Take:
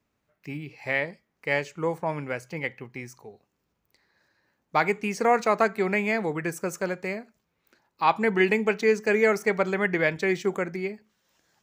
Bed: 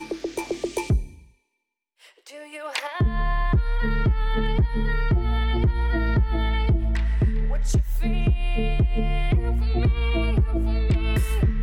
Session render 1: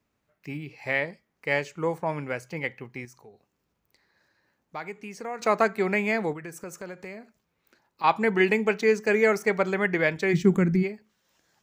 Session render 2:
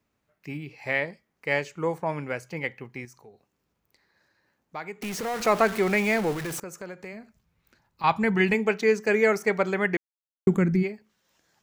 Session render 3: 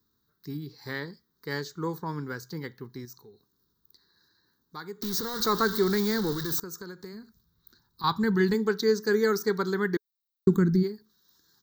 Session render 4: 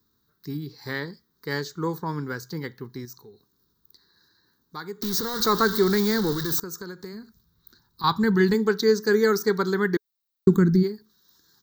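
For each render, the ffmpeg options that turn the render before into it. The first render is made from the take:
-filter_complex "[0:a]asettb=1/sr,asplit=3[s0][s1][s2];[s0]atrim=end=3.054[s3];[s1]atrim=start=3.05:end=5.42,asetpts=PTS-STARTPTS,afade=t=in:d=0.004:c=qsin,afade=t=out:st=2.366:d=0.004:c=qsin,acompressor=threshold=0.00178:ratio=1.5:attack=3.2:release=140:knee=1:detection=peak[s4];[s2]atrim=start=5.416[s5];[s3][s4]acrossfade=d=0.004:c1=hsin:c2=qsin[s6];[s6][s5]acrossfade=d=0.004:c1=qsin:c2=hsin,asettb=1/sr,asplit=3[s7][s8][s9];[s7]atrim=end=6.334[s10];[s8]atrim=start=6.33:end=8.04,asetpts=PTS-STARTPTS,afade=t=in:d=0.004:c=qsin,afade=t=out:st=1.706:d=0.004:c=qsin,acompressor=threshold=0.0112:ratio=2.5:attack=3.2:release=140:knee=1:detection=peak[s11];[s9]atrim=start=8.036[s12];[s10][s11]acrossfade=d=0.004:c1=hsin:c2=qsin[s13];[s13][s12]acrossfade=d=0.004:c1=qsin:c2=hsin,asplit=3[s14][s15][s16];[s14]afade=t=out:st=10.33:d=0.02[s17];[s15]asubboost=boost=12:cutoff=180,afade=t=in:st=10.33:d=0.02,afade=t=out:st=10.82:d=0.02[s18];[s16]afade=t=in:st=10.82:d=0.02[s19];[s17][s18][s19]amix=inputs=3:normalize=0"
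-filter_complex "[0:a]asettb=1/sr,asplit=3[s0][s1][s2];[s0]atrim=end=5.024[s3];[s1]atrim=start=5.02:end=6.6,asetpts=PTS-STARTPTS,afade=t=in:d=0.004:c=qsin,afade=t=out:st=1.576:d=0.004:c=qsin,aeval=exprs='val(0)+0.5*0.0316*sgn(val(0))':c=same[s4];[s2]atrim=start=6.596[s5];[s3][s4]acrossfade=d=0.004:c1=hsin:c2=qsin[s6];[s6][s5]acrossfade=d=0.004:c1=qsin:c2=hsin,asplit=3[s7][s8][s9];[s7]afade=t=out:st=7.12:d=0.02[s10];[s8]asubboost=boost=5:cutoff=150,afade=t=in:st=7.12:d=0.02,afade=t=out:st=8.53:d=0.02[s11];[s9]afade=t=in:st=8.53:d=0.02[s12];[s10][s11][s12]amix=inputs=3:normalize=0,asplit=3[s13][s14][s15];[s13]atrim=end=9.97,asetpts=PTS-STARTPTS,afade=t=out:st=9.966:d=0.004:c=hsin[s16];[s14]atrim=start=9.97:end=10.47,asetpts=PTS-STARTPTS,volume=0[s17];[s15]atrim=start=10.47,asetpts=PTS-STARTPTS,afade=t=in:d=0.004:c=hsin[s18];[s16][s17][s18]concat=n=3:v=0:a=1"
-af "firequalizer=gain_entry='entry(420,0);entry(610,-21);entry(980,-2);entry(1600,-1);entry(2500,-27);entry(3800,10);entry(11000,-12);entry(15000,15)':delay=0.05:min_phase=1"
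-af "volume=1.58"

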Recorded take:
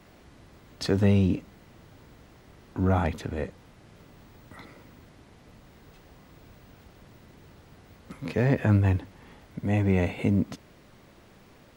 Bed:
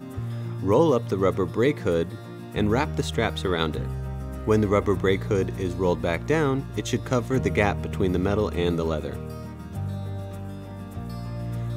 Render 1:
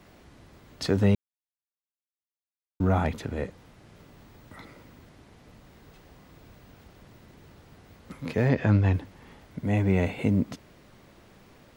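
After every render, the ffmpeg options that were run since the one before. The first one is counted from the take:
-filter_complex "[0:a]asettb=1/sr,asplit=3[s0][s1][s2];[s0]atrim=end=8.494[s3];[s1]atrim=start=8.49:end=8.94,asetpts=PTS-STARTPTS,afade=t=in:d=0.004:c=qsin,afade=t=out:st=0.446:d=0.004:c=qsin,highshelf=f=7400:t=q:w=1.5:g=-12[s4];[s2]atrim=start=8.936[s5];[s3][s4]acrossfade=d=0.004:c1=hsin:c2=qsin[s6];[s6][s5]acrossfade=d=0.004:c1=qsin:c2=hsin,asplit=3[s7][s8][s9];[s7]atrim=end=1.15,asetpts=PTS-STARTPTS,afade=t=out:st=1.146:d=0.004:c=hsin[s10];[s8]atrim=start=1.15:end=2.8,asetpts=PTS-STARTPTS,volume=0[s11];[s9]atrim=start=2.8,asetpts=PTS-STARTPTS,afade=t=in:d=0.004:c=hsin[s12];[s10][s11][s12]concat=n=3:v=0:a=1"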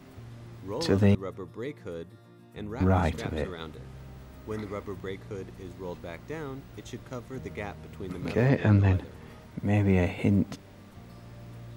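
-filter_complex "[1:a]volume=0.178[s0];[0:a][s0]amix=inputs=2:normalize=0"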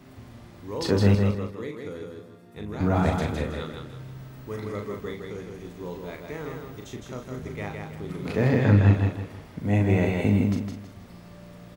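-filter_complex "[0:a]asplit=2[s0][s1];[s1]adelay=39,volume=0.531[s2];[s0][s2]amix=inputs=2:normalize=0,asplit=2[s3][s4];[s4]aecho=0:1:160|320|480|640:0.631|0.208|0.0687|0.0227[s5];[s3][s5]amix=inputs=2:normalize=0"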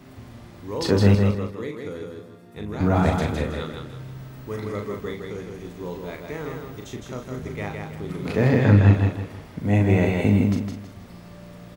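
-af "volume=1.41"

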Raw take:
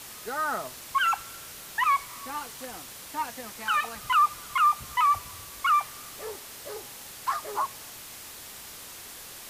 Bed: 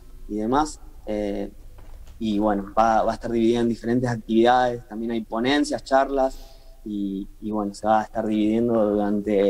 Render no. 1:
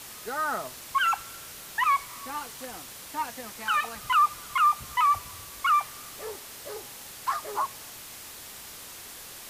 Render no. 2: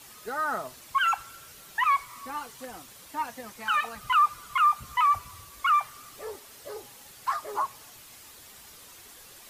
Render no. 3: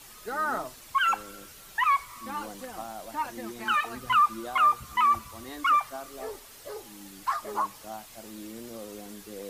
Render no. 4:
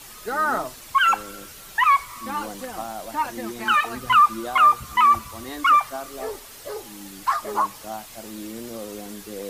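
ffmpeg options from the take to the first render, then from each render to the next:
-af anull
-af "afftdn=nr=8:nf=-44"
-filter_complex "[1:a]volume=0.0841[s0];[0:a][s0]amix=inputs=2:normalize=0"
-af "volume=2.11"

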